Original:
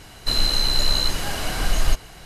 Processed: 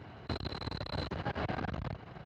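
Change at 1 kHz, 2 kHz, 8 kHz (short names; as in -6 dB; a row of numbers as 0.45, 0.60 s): -8.5 dB, -13.0 dB, under -35 dB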